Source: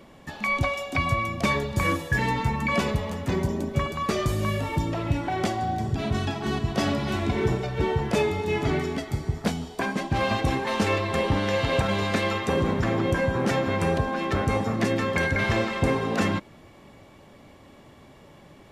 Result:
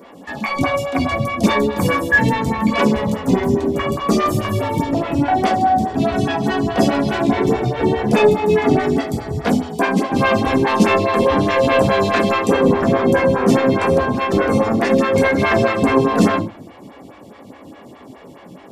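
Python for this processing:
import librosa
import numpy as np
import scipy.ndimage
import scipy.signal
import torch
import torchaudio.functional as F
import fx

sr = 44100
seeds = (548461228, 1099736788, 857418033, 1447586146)

p1 = scipy.signal.sosfilt(scipy.signal.butter(2, 98.0, 'highpass', fs=sr, output='sos'), x)
p2 = 10.0 ** (-22.5 / 20.0) * np.tanh(p1 / 10.0 ** (-22.5 / 20.0))
p3 = p1 + (p2 * 10.0 ** (-11.0 / 20.0))
p4 = fx.room_shoebox(p3, sr, seeds[0], volume_m3=210.0, walls='furnished', distance_m=1.8)
p5 = fx.stagger_phaser(p4, sr, hz=4.8)
y = p5 * 10.0 ** (7.0 / 20.0)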